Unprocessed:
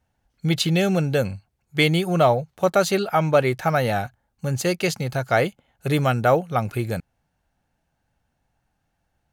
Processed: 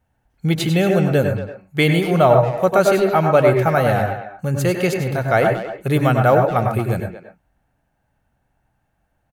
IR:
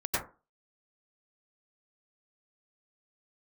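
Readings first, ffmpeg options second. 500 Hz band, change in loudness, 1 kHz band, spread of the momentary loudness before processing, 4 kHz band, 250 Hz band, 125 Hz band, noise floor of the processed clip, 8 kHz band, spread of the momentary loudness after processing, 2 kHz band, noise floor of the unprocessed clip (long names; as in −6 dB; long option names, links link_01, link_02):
+5.5 dB, +4.5 dB, +5.0 dB, 10 LU, −1.5 dB, +4.5 dB, +5.0 dB, −69 dBFS, −1.0 dB, 10 LU, +3.0 dB, −74 dBFS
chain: -filter_complex "[0:a]equalizer=frequency=5000:width_type=o:width=1.4:gain=-7.5,asplit=2[link_01][link_02];[link_02]adelay=230,highpass=300,lowpass=3400,asoftclip=type=hard:threshold=-14.5dB,volume=-11dB[link_03];[link_01][link_03]amix=inputs=2:normalize=0,asplit=2[link_04][link_05];[1:a]atrim=start_sample=2205,atrim=end_sample=6615[link_06];[link_05][link_06]afir=irnorm=-1:irlink=0,volume=-9.5dB[link_07];[link_04][link_07]amix=inputs=2:normalize=0,volume=1dB"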